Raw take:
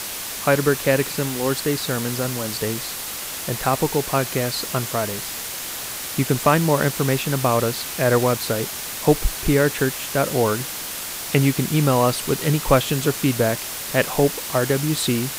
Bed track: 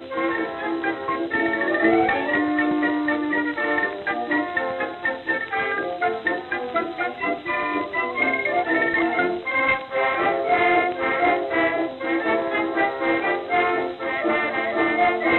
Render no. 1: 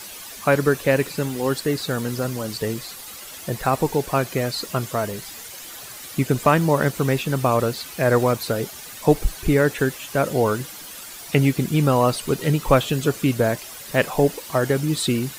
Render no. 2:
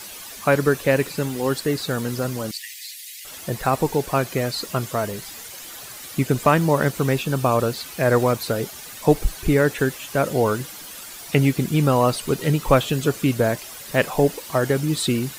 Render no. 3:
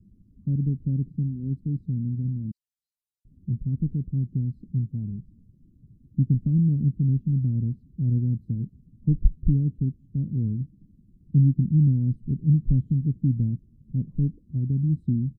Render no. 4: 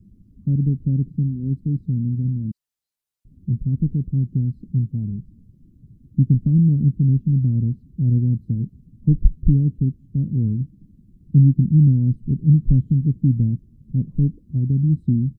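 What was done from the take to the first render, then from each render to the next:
denoiser 11 dB, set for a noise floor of -31 dBFS
2.51–3.25 steep high-pass 1800 Hz 72 dB/oct; 7.15–7.7 notch 2000 Hz, Q 7.5
inverse Chebyshev low-pass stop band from 760 Hz, stop band 60 dB; comb 1 ms, depth 46%
gain +5.5 dB; limiter -2 dBFS, peak gain reduction 1.5 dB

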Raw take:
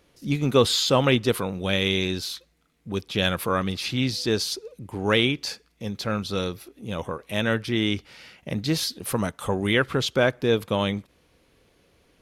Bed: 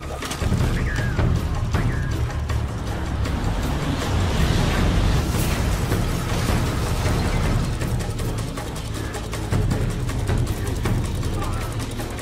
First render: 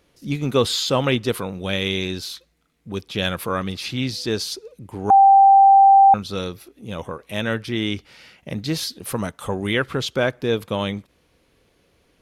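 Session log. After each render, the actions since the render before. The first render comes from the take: 5.1–6.14 bleep 785 Hz -7.5 dBFS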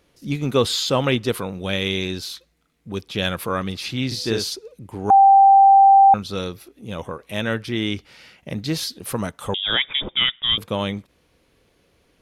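4.07–4.5 doubler 44 ms -4 dB; 9.54–10.58 inverted band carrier 3600 Hz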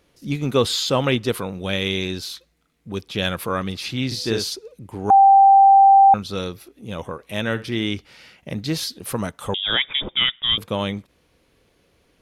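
7.44–7.86 flutter echo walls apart 11.7 m, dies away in 0.24 s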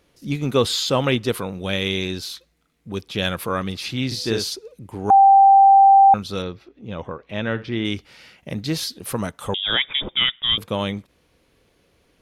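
6.42–7.85 air absorption 190 m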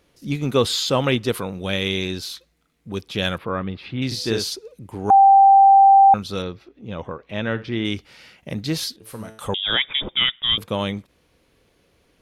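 3.38–4.02 air absorption 430 m; 8.96–9.39 resonator 110 Hz, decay 0.58 s, mix 80%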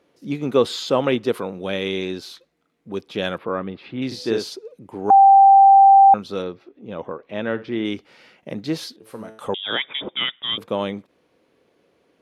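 HPF 330 Hz 12 dB/oct; tilt -3 dB/oct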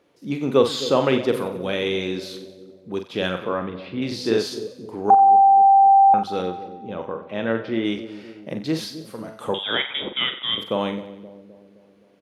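doubler 44 ms -8 dB; split-band echo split 660 Hz, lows 0.26 s, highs 92 ms, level -13 dB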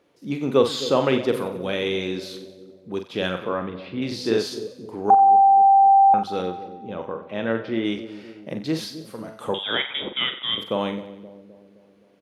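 gain -1 dB

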